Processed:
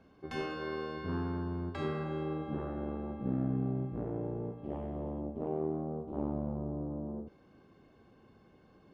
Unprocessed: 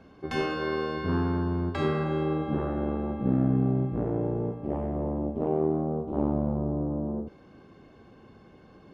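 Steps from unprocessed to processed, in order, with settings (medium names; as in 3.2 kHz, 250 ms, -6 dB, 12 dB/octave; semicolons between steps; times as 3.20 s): 4.58–5.21 s: peaking EQ 3.3 kHz +9.5 dB 0.62 oct; trim -8.5 dB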